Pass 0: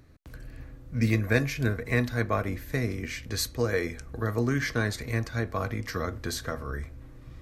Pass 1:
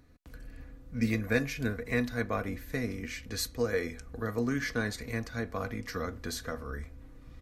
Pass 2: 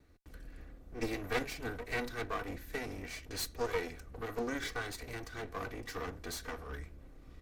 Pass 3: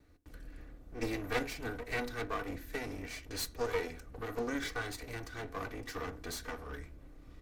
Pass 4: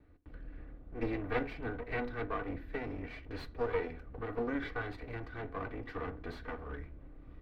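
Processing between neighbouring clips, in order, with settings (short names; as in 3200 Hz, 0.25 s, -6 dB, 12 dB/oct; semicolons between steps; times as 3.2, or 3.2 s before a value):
comb 4.1 ms, depth 41%; gain -4.5 dB
minimum comb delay 2.6 ms; gain -2.5 dB
FDN reverb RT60 0.36 s, low-frequency decay 1.45×, high-frequency decay 0.3×, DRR 13.5 dB
air absorption 440 m; gain +2 dB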